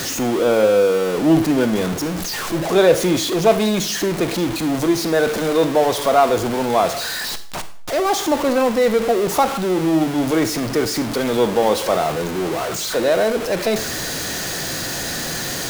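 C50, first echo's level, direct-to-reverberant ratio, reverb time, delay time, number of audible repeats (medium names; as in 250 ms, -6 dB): 13.5 dB, no echo, 11.0 dB, 0.55 s, no echo, no echo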